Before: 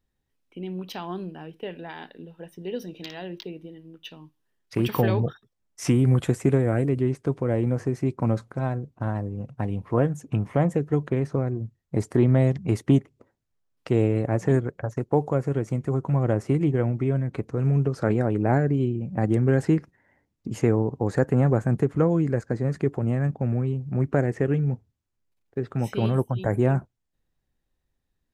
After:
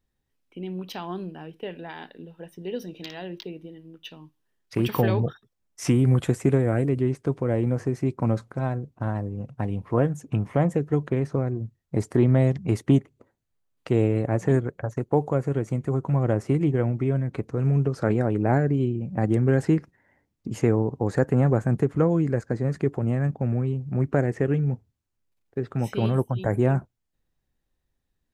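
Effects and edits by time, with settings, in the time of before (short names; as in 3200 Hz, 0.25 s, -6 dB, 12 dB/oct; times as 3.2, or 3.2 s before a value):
12.85–16.03 notch 5300 Hz, Q 11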